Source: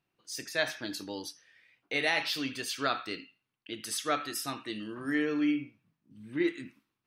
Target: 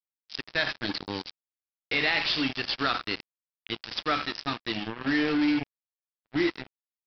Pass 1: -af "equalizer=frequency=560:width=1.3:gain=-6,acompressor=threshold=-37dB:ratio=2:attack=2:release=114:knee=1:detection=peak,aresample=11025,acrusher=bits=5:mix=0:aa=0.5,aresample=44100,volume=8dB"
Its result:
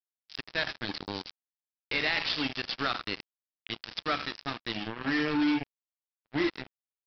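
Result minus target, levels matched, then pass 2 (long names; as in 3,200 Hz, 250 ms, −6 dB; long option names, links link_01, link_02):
downward compressor: peak gain reduction +3.5 dB
-af "equalizer=frequency=560:width=1.3:gain=-6,acompressor=threshold=-30.5dB:ratio=2:attack=2:release=114:knee=1:detection=peak,aresample=11025,acrusher=bits=5:mix=0:aa=0.5,aresample=44100,volume=8dB"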